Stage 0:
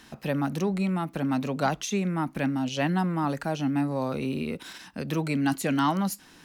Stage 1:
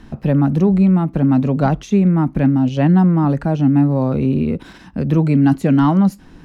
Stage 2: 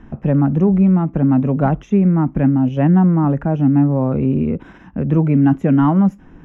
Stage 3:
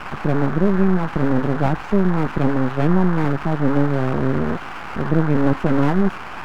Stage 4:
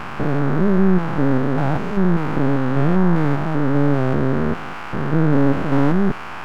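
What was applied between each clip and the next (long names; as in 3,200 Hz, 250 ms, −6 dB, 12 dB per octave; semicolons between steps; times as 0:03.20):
spectral tilt −4 dB per octave; level +5 dB
moving average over 10 samples
noise in a band 700–1,600 Hz −28 dBFS; half-wave rectification
spectrum averaged block by block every 200 ms; level +2 dB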